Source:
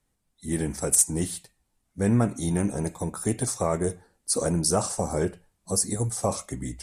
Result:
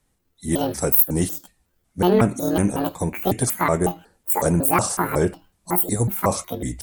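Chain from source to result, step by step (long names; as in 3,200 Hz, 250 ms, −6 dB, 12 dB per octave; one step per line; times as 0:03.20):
pitch shifter gated in a rhythm +10 semitones, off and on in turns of 184 ms
level +6 dB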